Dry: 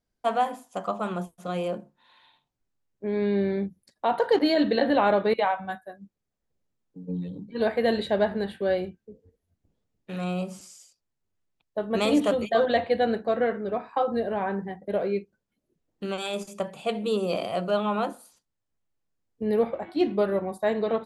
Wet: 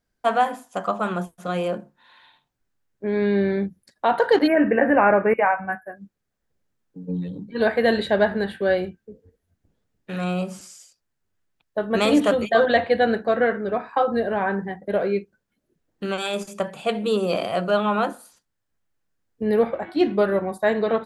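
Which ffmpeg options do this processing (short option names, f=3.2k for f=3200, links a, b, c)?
-filter_complex "[0:a]asplit=3[a][b][c];[a]afade=t=out:st=4.46:d=0.02[d];[b]asuperstop=centerf=5400:order=20:qfactor=0.74,afade=t=in:st=4.46:d=0.02,afade=t=out:st=5.95:d=0.02[e];[c]afade=t=in:st=5.95:d=0.02[f];[d][e][f]amix=inputs=3:normalize=0,equalizer=f=1.6k:t=o:w=0.6:g=6,volume=4dB"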